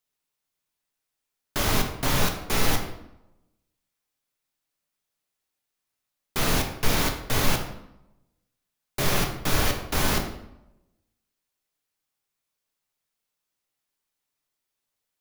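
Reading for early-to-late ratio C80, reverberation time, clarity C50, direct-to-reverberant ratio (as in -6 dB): 10.0 dB, 0.85 s, 7.5 dB, 2.5 dB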